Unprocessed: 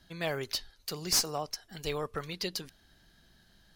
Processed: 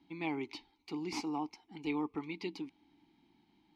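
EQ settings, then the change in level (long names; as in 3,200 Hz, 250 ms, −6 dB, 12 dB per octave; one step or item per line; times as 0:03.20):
formant filter u
high-shelf EQ 9,400 Hz −7 dB
+11.5 dB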